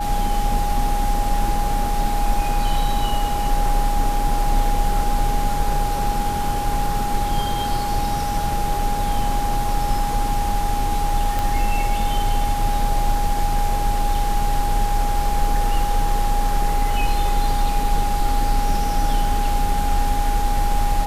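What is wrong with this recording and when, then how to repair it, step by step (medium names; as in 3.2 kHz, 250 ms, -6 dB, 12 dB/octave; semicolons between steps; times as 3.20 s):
whine 820 Hz -23 dBFS
11.39 s: pop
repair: de-click; band-stop 820 Hz, Q 30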